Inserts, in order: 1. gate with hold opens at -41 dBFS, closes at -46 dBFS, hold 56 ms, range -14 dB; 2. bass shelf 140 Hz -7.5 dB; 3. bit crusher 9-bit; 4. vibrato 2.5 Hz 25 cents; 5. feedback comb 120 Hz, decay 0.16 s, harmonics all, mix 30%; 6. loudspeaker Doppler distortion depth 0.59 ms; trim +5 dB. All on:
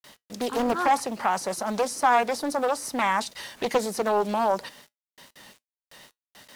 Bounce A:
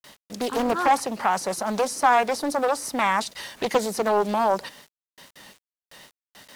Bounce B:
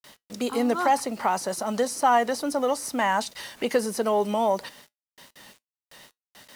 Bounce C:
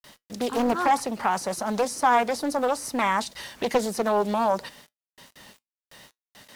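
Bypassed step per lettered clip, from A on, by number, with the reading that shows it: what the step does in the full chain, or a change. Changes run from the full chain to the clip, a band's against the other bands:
5, loudness change +2.0 LU; 6, 250 Hz band +2.0 dB; 2, 250 Hz band +2.5 dB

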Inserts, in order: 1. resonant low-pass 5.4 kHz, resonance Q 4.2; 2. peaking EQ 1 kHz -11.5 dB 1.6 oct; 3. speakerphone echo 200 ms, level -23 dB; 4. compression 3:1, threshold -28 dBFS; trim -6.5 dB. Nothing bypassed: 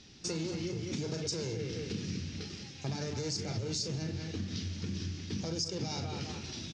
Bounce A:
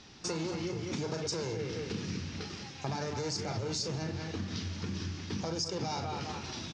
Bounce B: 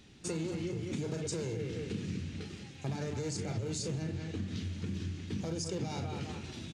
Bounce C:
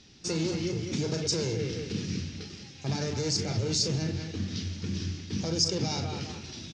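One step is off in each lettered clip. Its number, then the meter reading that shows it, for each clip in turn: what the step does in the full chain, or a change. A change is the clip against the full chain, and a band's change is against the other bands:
2, 1 kHz band +8.0 dB; 1, 4 kHz band -7.0 dB; 4, mean gain reduction 4.0 dB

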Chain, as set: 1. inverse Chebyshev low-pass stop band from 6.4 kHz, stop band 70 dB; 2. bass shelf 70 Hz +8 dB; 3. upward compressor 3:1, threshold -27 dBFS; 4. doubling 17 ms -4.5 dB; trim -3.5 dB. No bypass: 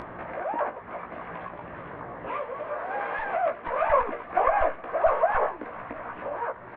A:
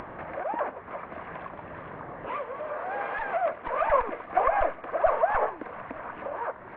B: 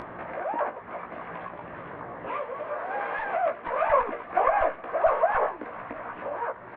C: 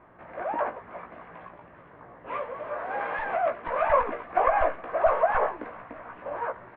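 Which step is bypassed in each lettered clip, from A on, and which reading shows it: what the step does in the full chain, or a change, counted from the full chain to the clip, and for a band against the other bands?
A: 4, loudness change -1.0 LU; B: 2, 125 Hz band -2.0 dB; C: 3, momentary loudness spread change +5 LU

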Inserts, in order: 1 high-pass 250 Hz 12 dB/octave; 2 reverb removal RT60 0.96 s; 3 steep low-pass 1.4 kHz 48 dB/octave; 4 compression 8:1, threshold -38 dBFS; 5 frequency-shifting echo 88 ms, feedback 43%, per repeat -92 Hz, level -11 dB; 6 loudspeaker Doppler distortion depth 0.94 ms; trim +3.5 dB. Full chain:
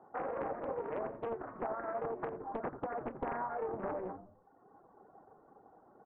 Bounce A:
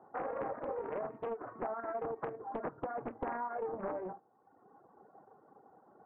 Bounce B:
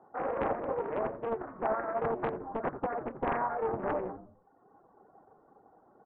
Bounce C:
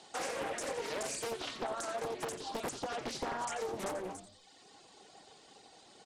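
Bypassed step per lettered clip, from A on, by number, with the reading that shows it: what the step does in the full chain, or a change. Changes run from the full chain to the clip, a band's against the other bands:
5, 125 Hz band -1.5 dB; 4, mean gain reduction 3.5 dB; 3, 2 kHz band +6.5 dB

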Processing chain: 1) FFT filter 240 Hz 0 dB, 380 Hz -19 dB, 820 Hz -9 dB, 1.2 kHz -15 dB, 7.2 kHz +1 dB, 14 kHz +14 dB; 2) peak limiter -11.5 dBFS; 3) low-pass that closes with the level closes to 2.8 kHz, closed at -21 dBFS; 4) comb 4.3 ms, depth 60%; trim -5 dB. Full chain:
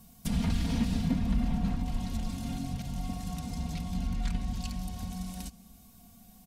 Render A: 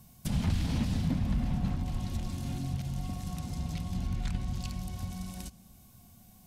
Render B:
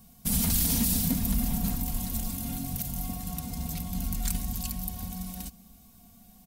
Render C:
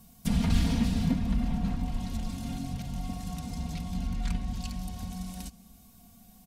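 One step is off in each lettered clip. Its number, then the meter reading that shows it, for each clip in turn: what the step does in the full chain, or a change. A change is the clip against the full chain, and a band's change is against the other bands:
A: 4, 125 Hz band +3.0 dB; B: 3, 8 kHz band +15.0 dB; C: 2, momentary loudness spread change +3 LU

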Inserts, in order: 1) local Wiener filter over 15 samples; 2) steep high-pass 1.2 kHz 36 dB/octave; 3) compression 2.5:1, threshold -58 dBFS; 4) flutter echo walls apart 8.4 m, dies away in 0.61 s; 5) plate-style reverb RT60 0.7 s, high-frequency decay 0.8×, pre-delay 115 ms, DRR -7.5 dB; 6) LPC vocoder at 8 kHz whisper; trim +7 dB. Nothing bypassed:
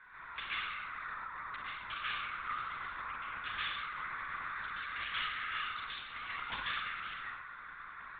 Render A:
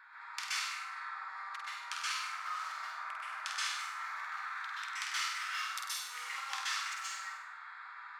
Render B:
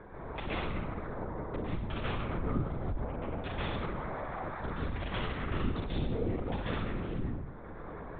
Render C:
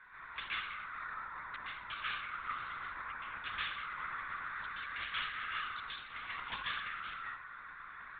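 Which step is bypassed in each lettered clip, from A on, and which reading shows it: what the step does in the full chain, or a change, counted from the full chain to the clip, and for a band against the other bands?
6, 500 Hz band -7.5 dB; 2, 2 kHz band -29.5 dB; 4, loudness change -1.5 LU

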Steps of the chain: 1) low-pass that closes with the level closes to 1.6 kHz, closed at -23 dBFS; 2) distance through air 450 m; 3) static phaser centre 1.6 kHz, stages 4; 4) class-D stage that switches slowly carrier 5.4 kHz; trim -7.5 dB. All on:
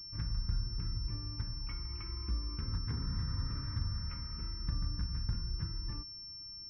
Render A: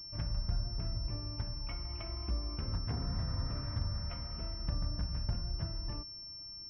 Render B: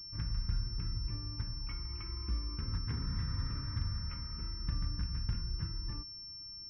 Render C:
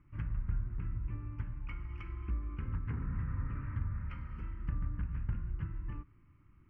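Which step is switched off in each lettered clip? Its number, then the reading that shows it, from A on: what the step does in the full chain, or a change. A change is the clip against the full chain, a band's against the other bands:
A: 3, 500 Hz band +9.0 dB; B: 1, 2 kHz band +1.5 dB; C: 4, 2 kHz band +2.0 dB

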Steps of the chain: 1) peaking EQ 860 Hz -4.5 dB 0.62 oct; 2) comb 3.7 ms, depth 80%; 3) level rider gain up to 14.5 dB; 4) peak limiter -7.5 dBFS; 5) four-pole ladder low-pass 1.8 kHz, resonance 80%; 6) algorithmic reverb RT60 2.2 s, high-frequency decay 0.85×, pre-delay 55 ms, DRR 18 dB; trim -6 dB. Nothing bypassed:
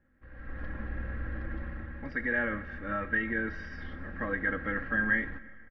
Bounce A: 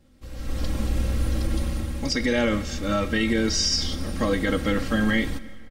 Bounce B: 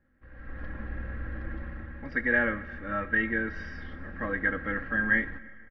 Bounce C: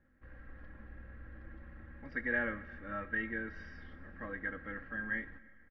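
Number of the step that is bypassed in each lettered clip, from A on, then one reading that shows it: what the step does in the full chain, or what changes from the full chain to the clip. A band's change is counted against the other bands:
5, 4 kHz band +18.5 dB; 4, momentary loudness spread change +3 LU; 3, momentary loudness spread change +6 LU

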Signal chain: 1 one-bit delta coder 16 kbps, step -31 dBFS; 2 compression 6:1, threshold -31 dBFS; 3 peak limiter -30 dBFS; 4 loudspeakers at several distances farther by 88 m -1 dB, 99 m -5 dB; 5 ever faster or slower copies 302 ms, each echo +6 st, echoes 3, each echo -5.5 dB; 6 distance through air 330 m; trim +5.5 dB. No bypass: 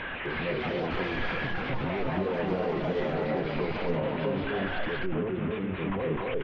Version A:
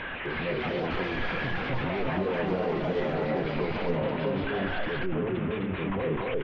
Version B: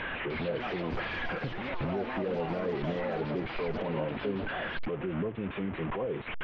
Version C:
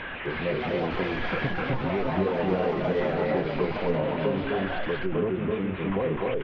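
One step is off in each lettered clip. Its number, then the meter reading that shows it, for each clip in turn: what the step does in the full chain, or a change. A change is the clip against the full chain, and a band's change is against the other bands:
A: 2, mean gain reduction 3.5 dB; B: 4, crest factor change -2.5 dB; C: 3, mean gain reduction 2.0 dB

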